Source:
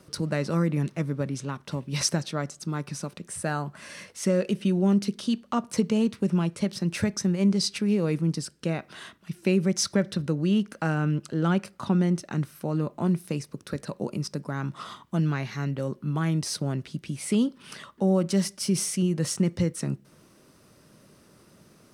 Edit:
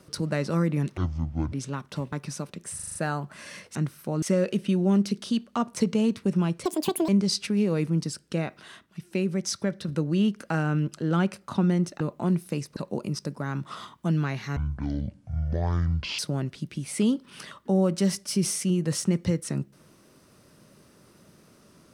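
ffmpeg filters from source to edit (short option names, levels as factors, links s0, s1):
-filter_complex "[0:a]asplit=19[s0][s1][s2][s3][s4][s5][s6][s7][s8][s9][s10][s11][s12][s13][s14][s15][s16][s17][s18];[s0]atrim=end=0.974[s19];[s1]atrim=start=0.97:end=1.28,asetpts=PTS-STARTPTS,asetrate=24696,aresample=44100,atrim=end_sample=24412,asetpts=PTS-STARTPTS[s20];[s2]atrim=start=1.276:end=1.882[s21];[s3]atrim=start=2.758:end=3.432[s22];[s4]atrim=start=3.388:end=3.432[s23];[s5]atrim=start=3.388:end=3.432[s24];[s6]atrim=start=3.388:end=3.432[s25];[s7]atrim=start=3.388:end=3.432[s26];[s8]atrim=start=3.388:end=4.192[s27];[s9]atrim=start=12.318:end=12.792[s28];[s10]atrim=start=4.188:end=6.624[s29];[s11]atrim=start=6.62:end=7.4,asetpts=PTS-STARTPTS,asetrate=79821,aresample=44100,atrim=end_sample=19004,asetpts=PTS-STARTPTS[s30];[s12]atrim=start=7.396:end=8.912[s31];[s13]atrim=start=8.908:end=10.202,asetpts=PTS-STARTPTS,volume=0.631[s32];[s14]atrim=start=10.198:end=12.322[s33];[s15]atrim=start=12.788:end=13.552[s34];[s16]atrim=start=13.848:end=15.654[s35];[s17]atrim=start=15.65:end=16.51,asetpts=PTS-STARTPTS,asetrate=23373,aresample=44100,atrim=end_sample=71558,asetpts=PTS-STARTPTS[s36];[s18]atrim=start=16.506[s37];[s19][s20]acrossfade=d=0.004:c1=hsin:c2=hsin[s38];[s38][s21]acrossfade=d=0.004:c1=hsin:c2=hsin[s39];[s39][s22]acrossfade=d=0.004:c1=hsin:c2=hsin[s40];[s40][s23]acrossfade=d=0.004:c1=hsin:c2=hsin[s41];[s41][s24]acrossfade=d=0.004:c1=hsin:c2=hsin[s42];[s42][s25]acrossfade=d=0.004:c1=hsin:c2=hsin[s43];[s43][s26]acrossfade=d=0.004:c1=hsin:c2=hsin[s44];[s44][s27]acrossfade=d=0.004:c1=hsin:c2=hsin[s45];[s45][s28]acrossfade=d=0.004:c1=hsin:c2=hsin[s46];[s46][s29]acrossfade=d=0.004:c1=hsin:c2=hsin[s47];[s47][s30]acrossfade=d=0.004:c1=hsin:c2=hsin[s48];[s48][s31]acrossfade=d=0.004:c1=hsin:c2=hsin[s49];[s49][s32]acrossfade=d=0.004:c1=hsin:c2=hsin[s50];[s50][s33]acrossfade=d=0.004:c1=hsin:c2=hsin[s51];[s51][s34]acrossfade=d=0.004:c1=hsin:c2=hsin[s52];[s52][s35]acrossfade=d=0.004:c1=hsin:c2=hsin[s53];[s53][s36]acrossfade=d=0.004:c1=hsin:c2=hsin[s54];[s54][s37]acrossfade=d=0.004:c1=hsin:c2=hsin"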